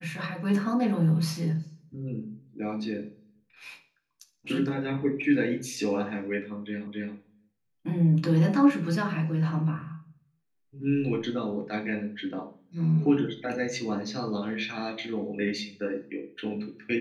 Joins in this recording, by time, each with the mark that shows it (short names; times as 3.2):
6.87 repeat of the last 0.27 s